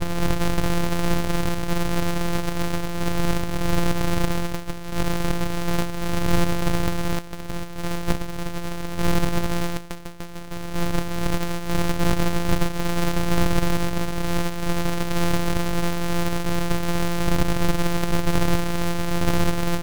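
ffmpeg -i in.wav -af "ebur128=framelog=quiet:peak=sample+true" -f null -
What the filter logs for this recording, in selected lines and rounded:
Integrated loudness:
  I:         -25.6 LUFS
  Threshold: -35.7 LUFS
Loudness range:
  LRA:         3.2 LU
  Threshold: -45.9 LUFS
  LRA low:   -27.9 LUFS
  LRA high:  -24.7 LUFS
Sample peak:
  Peak:       -6.1 dBFS
True peak:
  Peak:       -5.0 dBFS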